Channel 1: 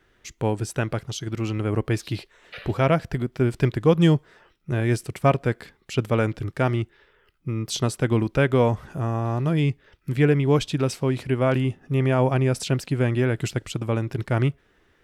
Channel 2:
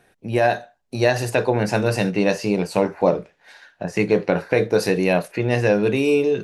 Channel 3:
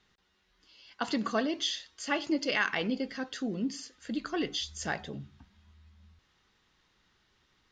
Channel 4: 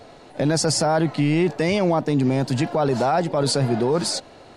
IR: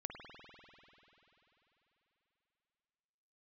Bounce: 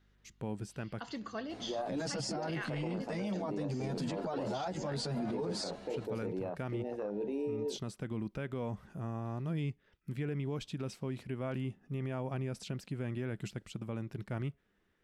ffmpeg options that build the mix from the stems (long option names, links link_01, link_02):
-filter_complex "[0:a]volume=-15dB[link_01];[1:a]highpass=frequency=200:width=0.5412,highpass=frequency=200:width=1.3066,afwtdn=0.0891,adelay=1350,volume=-14.5dB[link_02];[2:a]aeval=exprs='val(0)+0.00141*(sin(2*PI*50*n/s)+sin(2*PI*2*50*n/s)/2+sin(2*PI*3*50*n/s)/3+sin(2*PI*4*50*n/s)/4+sin(2*PI*5*50*n/s)/5)':channel_layout=same,volume=-11dB,asplit=2[link_03][link_04];[3:a]asplit=2[link_05][link_06];[link_06]adelay=9.7,afreqshift=0.82[link_07];[link_05][link_07]amix=inputs=2:normalize=1,adelay=1500,volume=-2.5dB[link_08];[link_04]apad=whole_len=662940[link_09];[link_01][link_09]sidechaincompress=threshold=-60dB:ratio=8:attack=16:release=390[link_10];[link_10][link_08]amix=inputs=2:normalize=0,equalizer=frequency=200:width=3.8:gain=10,acompressor=threshold=-29dB:ratio=6,volume=0dB[link_11];[link_02][link_03][link_11]amix=inputs=3:normalize=0,acrossover=split=7100[link_12][link_13];[link_13]acompressor=threshold=-56dB:ratio=4:attack=1:release=60[link_14];[link_12][link_14]amix=inputs=2:normalize=0,alimiter=level_in=5dB:limit=-24dB:level=0:latency=1:release=33,volume=-5dB"